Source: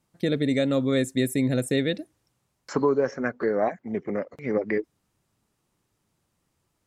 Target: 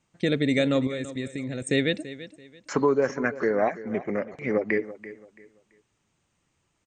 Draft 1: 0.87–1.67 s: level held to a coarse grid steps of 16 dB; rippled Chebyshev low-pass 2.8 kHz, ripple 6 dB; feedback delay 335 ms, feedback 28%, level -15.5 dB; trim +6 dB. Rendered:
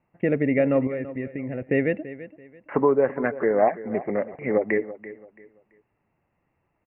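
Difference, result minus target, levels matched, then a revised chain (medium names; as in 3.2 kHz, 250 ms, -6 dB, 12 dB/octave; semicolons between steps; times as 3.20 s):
2 kHz band -3.0 dB
0.87–1.67 s: level held to a coarse grid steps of 16 dB; rippled Chebyshev low-pass 8.7 kHz, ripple 6 dB; feedback delay 335 ms, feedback 28%, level -15.5 dB; trim +6 dB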